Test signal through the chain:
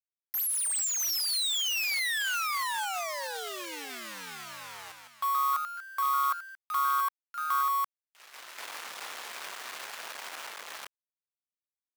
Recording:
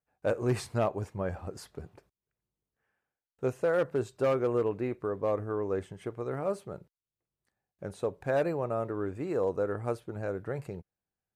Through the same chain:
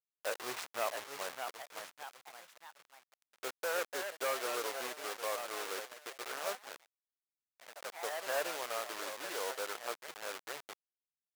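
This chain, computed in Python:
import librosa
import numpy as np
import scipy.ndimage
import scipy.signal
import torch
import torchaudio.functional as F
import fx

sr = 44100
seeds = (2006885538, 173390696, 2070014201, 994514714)

y = fx.delta_hold(x, sr, step_db=-31.5)
y = scipy.signal.sosfilt(scipy.signal.butter(2, 900.0, 'highpass', fs=sr, output='sos'), y)
y = fx.echo_pitch(y, sr, ms=693, semitones=2, count=3, db_per_echo=-6.0)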